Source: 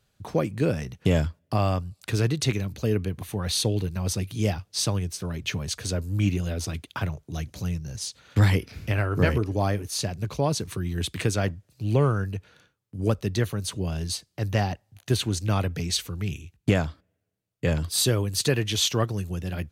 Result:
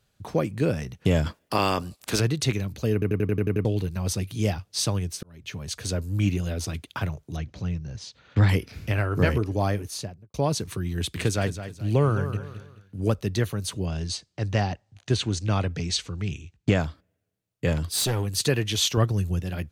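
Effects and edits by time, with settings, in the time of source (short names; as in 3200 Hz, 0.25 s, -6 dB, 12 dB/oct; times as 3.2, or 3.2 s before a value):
1.25–2.19 spectral limiter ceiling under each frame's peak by 20 dB
2.93 stutter in place 0.09 s, 8 plays
5.23–5.87 fade in
7.36–8.49 air absorption 150 m
9.8–10.34 studio fade out
10.95–13.12 feedback echo 0.214 s, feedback 32%, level -11 dB
13.85–16.8 LPF 7800 Hz 24 dB/oct
17.72–18.36 hard clip -21 dBFS
18.97–19.4 low shelf 140 Hz +8.5 dB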